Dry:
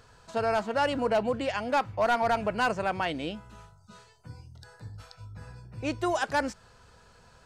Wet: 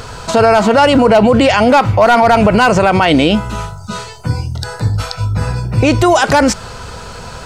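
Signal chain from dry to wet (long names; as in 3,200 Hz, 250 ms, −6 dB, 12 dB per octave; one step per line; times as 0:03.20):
notch filter 1,700 Hz, Q 11
boost into a limiter +29 dB
level −1 dB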